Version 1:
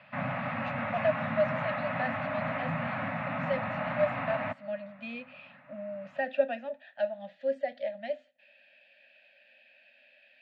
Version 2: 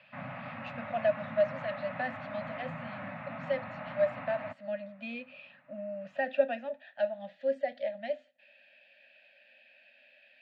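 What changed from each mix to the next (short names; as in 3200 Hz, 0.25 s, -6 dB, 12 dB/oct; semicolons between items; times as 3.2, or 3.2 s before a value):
background -8.5 dB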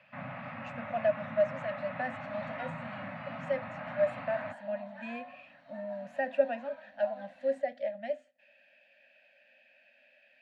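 speech: remove synth low-pass 4000 Hz, resonance Q 2.3; second sound: unmuted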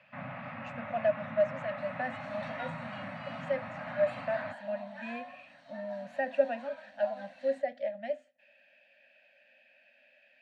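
second sound: remove tape spacing loss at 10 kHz 20 dB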